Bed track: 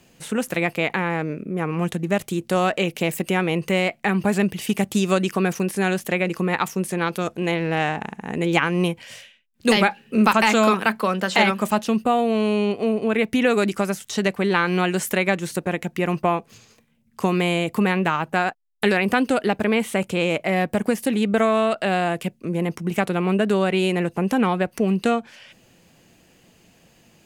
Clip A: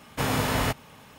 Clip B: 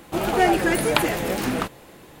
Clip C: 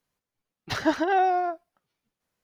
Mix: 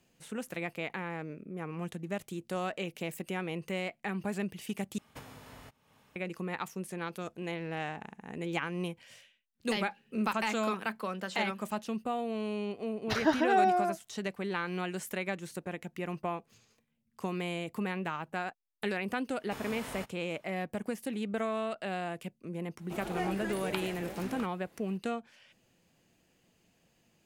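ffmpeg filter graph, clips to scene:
ffmpeg -i bed.wav -i cue0.wav -i cue1.wav -i cue2.wav -filter_complex "[1:a]asplit=2[link_01][link_02];[0:a]volume=-14.5dB[link_03];[link_01]acompressor=threshold=-36dB:ratio=8:attack=80:release=580:knee=1:detection=peak[link_04];[link_02]equalizer=frequency=89:width_type=o:width=1.5:gain=-8[link_05];[link_03]asplit=2[link_06][link_07];[link_06]atrim=end=4.984[link_08];[link_04]atrim=end=1.18,asetpts=PTS-STARTPTS,volume=-14.5dB[link_09];[link_07]atrim=start=6.156[link_10];[3:a]atrim=end=2.43,asetpts=PTS-STARTPTS,volume=-3.5dB,afade=type=in:duration=0.004:curve=hsin,afade=type=out:start_time=2.426:duration=0.004:curve=hsin,adelay=12400[link_11];[link_05]atrim=end=1.18,asetpts=PTS-STARTPTS,volume=-17dB,afade=type=in:duration=0.004:curve=hsin,afade=type=out:start_time=1.176:duration=0.004:curve=hsin,adelay=19330[link_12];[2:a]atrim=end=2.2,asetpts=PTS-STARTPTS,volume=-17.5dB,afade=type=in:duration=0.004:curve=hsin,afade=type=out:start_time=2.196:duration=0.004:curve=hsin,adelay=22780[link_13];[link_08][link_09]acrossfade=duration=0.004:curve1=hsin:curve2=hsin[link_14];[link_14][link_10]acrossfade=duration=0.004:curve1=hsin:curve2=hsin[link_15];[link_15][link_11][link_12][link_13]amix=inputs=4:normalize=0" out.wav

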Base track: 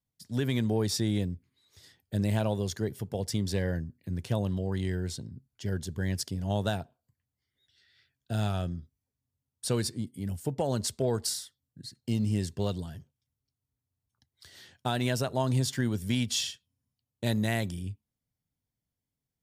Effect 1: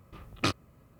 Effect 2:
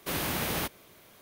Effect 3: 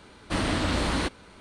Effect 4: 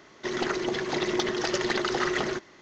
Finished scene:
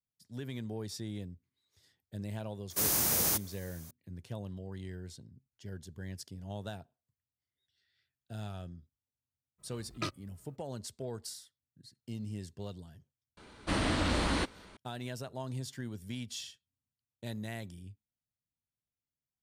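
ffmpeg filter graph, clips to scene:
ffmpeg -i bed.wav -i cue0.wav -i cue1.wav -i cue2.wav -filter_complex "[0:a]volume=-12dB[link_01];[2:a]highshelf=frequency=4400:width_type=q:width=1.5:gain=11[link_02];[1:a]asplit=2[link_03][link_04];[link_04]adelay=2.5,afreqshift=-2.5[link_05];[link_03][link_05]amix=inputs=2:normalize=1[link_06];[link_02]atrim=end=1.21,asetpts=PTS-STARTPTS,volume=-4.5dB,afade=type=in:duration=0.004:curve=hsin,afade=type=out:start_time=1.206:duration=0.004:curve=hsin,adelay=2700[link_07];[link_06]atrim=end=0.99,asetpts=PTS-STARTPTS,volume=-5.5dB,afade=type=in:duration=0.02,afade=type=out:start_time=0.97:duration=0.02,adelay=9580[link_08];[3:a]atrim=end=1.4,asetpts=PTS-STARTPTS,volume=-4dB,afade=type=in:duration=0.004:curve=hsin,afade=type=out:start_time=1.396:duration=0.004:curve=hsin,adelay=13370[link_09];[link_01][link_07][link_08][link_09]amix=inputs=4:normalize=0" out.wav

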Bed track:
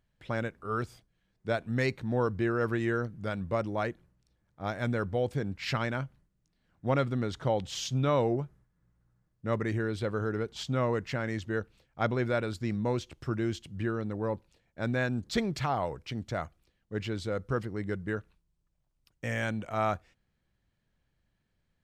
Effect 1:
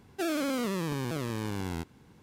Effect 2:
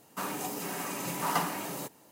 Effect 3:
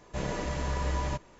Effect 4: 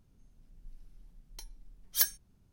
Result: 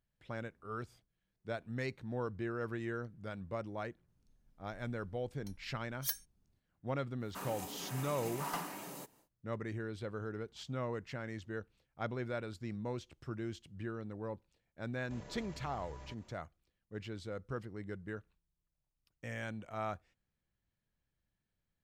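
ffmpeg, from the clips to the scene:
ffmpeg -i bed.wav -i cue0.wav -i cue1.wav -i cue2.wav -i cue3.wav -filter_complex "[0:a]volume=-10dB[link_01];[2:a]aeval=exprs='clip(val(0),-1,0.0794)':channel_layout=same[link_02];[3:a]acompressor=threshold=-38dB:ratio=6:attack=3.2:release=140:knee=1:detection=peak[link_03];[4:a]atrim=end=2.52,asetpts=PTS-STARTPTS,volume=-10dB,afade=type=in:duration=0.004:curve=hsin,afade=type=out:start_time=2.516:duration=0.004:curve=hsin,adelay=4080[link_04];[link_02]atrim=end=2.11,asetpts=PTS-STARTPTS,volume=-9.5dB,afade=type=in:duration=0.1,afade=type=out:start_time=2.01:duration=0.1,adelay=7180[link_05];[link_03]atrim=end=1.39,asetpts=PTS-STARTPTS,volume=-9.5dB,afade=type=in:duration=0.004:curve=hsin,afade=type=out:start_time=1.386:duration=0.004:curve=hsin,adelay=14970[link_06];[link_01][link_04][link_05][link_06]amix=inputs=4:normalize=0" out.wav

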